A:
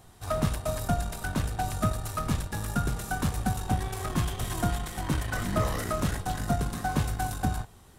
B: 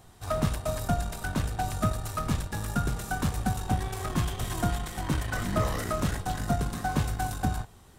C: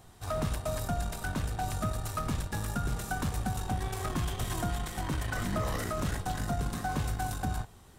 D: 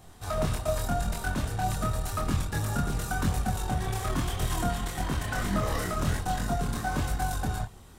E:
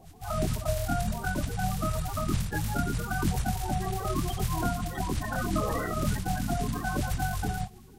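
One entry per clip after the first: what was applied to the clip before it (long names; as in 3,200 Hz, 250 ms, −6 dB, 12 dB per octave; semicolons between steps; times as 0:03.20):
parametric band 11,000 Hz −4 dB 0.26 octaves
brickwall limiter −21.5 dBFS, peak gain reduction 5.5 dB; level −1 dB
multi-voice chorus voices 2, 0.9 Hz, delay 25 ms, depth 2.4 ms; level +6.5 dB
spectral magnitudes quantised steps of 30 dB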